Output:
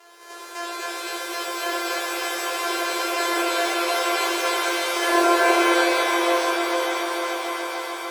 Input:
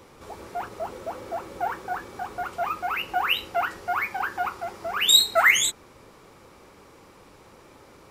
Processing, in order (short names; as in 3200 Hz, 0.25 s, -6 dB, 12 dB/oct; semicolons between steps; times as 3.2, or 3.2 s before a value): sample sorter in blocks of 128 samples; treble ducked by the level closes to 980 Hz, closed at -17.5 dBFS; elliptic high-pass 400 Hz, stop band 60 dB; on a send: swelling echo 0.146 s, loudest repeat 5, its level -12.5 dB; on the sum: shimmer reverb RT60 3.4 s, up +7 st, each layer -2 dB, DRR -8.5 dB